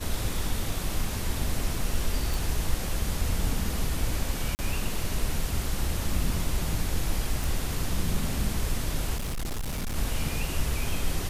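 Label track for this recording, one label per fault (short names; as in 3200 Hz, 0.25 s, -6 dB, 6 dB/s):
2.340000	2.340000	pop
4.550000	4.590000	gap 39 ms
7.440000	7.440000	pop
9.160000	9.960000	clipped -27.5 dBFS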